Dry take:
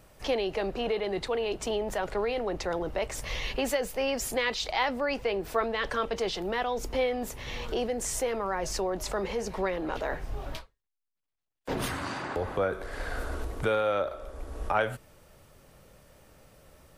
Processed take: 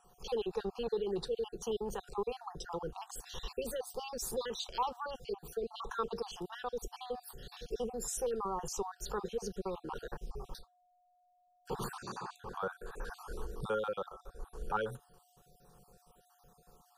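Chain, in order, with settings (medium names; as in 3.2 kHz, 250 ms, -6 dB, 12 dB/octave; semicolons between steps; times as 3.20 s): random holes in the spectrogram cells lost 48%; whistle 720 Hz -60 dBFS; static phaser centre 420 Hz, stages 8; trim -2.5 dB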